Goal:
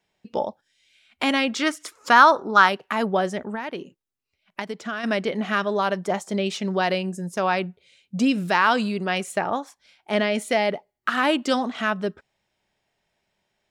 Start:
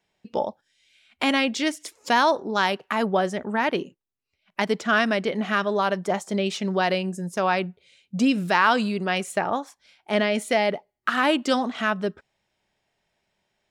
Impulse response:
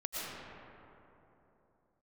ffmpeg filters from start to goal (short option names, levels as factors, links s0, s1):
-filter_complex "[0:a]asettb=1/sr,asplit=3[s0][s1][s2];[s0]atrim=end=1.494[s3];[s1]atrim=start=1.49:end=2.69,asetpts=PTS-STARTPTS,afade=t=in:d=0.004:c=qsin,afade=t=out:st=1.196:d=0.004:c=qsin,equalizer=f=1300:t=o:w=0.64:g=14[s4];[s2]atrim=start=2.686[s5];[s3][s4]acrossfade=d=0.004:c1=hsin:c2=qsin[s6];[s6][s5]acrossfade=d=0.004:c1=qsin:c2=hsin,asplit=3[s7][s8][s9];[s7]afade=t=out:st=3.42:d=0.02[s10];[s8]acompressor=threshold=0.0447:ratio=10,afade=t=in:st=3.42:d=0.02,afade=t=out:st=5.03:d=0.02[s11];[s9]afade=t=in:st=5.03:d=0.02[s12];[s10][s11][s12]amix=inputs=3:normalize=0"